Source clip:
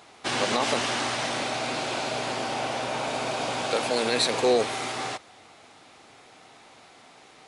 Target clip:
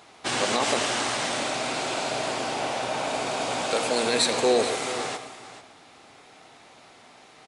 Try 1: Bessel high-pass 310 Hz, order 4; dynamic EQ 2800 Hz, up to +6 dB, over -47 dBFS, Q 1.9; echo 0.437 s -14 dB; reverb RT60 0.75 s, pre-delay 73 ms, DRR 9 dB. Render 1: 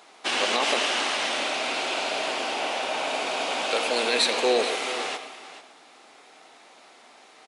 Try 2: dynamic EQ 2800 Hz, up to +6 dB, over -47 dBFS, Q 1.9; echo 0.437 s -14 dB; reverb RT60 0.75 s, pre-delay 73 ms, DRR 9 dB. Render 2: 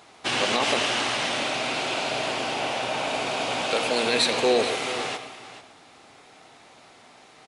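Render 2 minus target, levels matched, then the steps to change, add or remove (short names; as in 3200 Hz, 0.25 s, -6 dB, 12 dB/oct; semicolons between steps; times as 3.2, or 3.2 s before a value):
8000 Hz band -4.5 dB
change: dynamic EQ 8000 Hz, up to +6 dB, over -47 dBFS, Q 1.9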